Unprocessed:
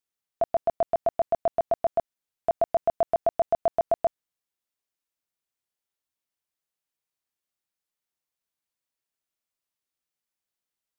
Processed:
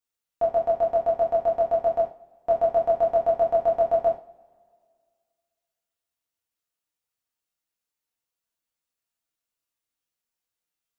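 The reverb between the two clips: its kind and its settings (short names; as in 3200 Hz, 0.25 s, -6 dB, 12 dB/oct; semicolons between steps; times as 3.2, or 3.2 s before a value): two-slope reverb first 0.34 s, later 2 s, from -26 dB, DRR -4 dB; gain -4.5 dB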